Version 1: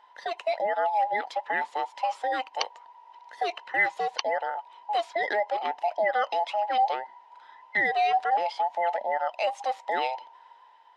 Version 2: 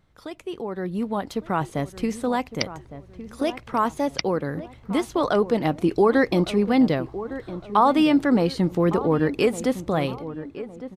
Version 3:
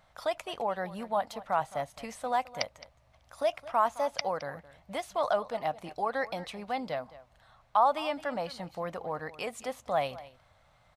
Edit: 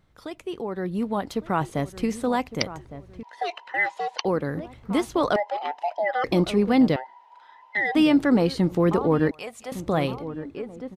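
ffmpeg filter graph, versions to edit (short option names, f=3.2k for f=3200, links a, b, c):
-filter_complex "[0:a]asplit=3[a][b][c];[1:a]asplit=5[d][e][f][g][h];[d]atrim=end=3.232[i];[a]atrim=start=3.228:end=4.252[j];[e]atrim=start=4.248:end=5.362[k];[b]atrim=start=5.358:end=6.242[l];[f]atrim=start=6.238:end=6.962[m];[c]atrim=start=6.958:end=7.952[n];[g]atrim=start=7.948:end=9.312[o];[2:a]atrim=start=9.308:end=9.722[p];[h]atrim=start=9.718[q];[i][j]acrossfade=d=0.004:c1=hsin:c2=hsin[r];[r][k]acrossfade=d=0.004:c1=hsin:c2=hsin[s];[s][l]acrossfade=d=0.004:c1=hsin:c2=hsin[t];[t][m]acrossfade=d=0.004:c1=hsin:c2=hsin[u];[u][n]acrossfade=d=0.004:c1=hsin:c2=hsin[v];[v][o]acrossfade=d=0.004:c1=hsin:c2=hsin[w];[w][p]acrossfade=d=0.004:c1=hsin:c2=hsin[x];[x][q]acrossfade=d=0.004:c1=hsin:c2=hsin"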